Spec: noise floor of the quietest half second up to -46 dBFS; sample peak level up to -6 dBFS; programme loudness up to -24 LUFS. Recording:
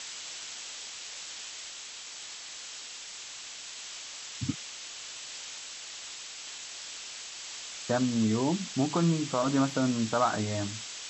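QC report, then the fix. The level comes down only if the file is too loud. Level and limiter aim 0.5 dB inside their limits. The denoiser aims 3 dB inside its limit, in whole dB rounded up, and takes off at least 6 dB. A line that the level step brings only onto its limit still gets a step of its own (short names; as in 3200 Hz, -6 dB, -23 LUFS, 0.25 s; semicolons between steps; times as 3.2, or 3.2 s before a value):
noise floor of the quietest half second -43 dBFS: fail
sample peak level -14.5 dBFS: OK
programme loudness -33.0 LUFS: OK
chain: denoiser 6 dB, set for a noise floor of -43 dBFS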